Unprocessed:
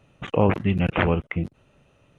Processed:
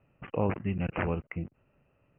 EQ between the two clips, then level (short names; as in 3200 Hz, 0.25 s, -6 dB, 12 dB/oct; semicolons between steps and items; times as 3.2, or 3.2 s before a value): steep low-pass 2900 Hz 96 dB/oct; air absorption 110 m; -9.0 dB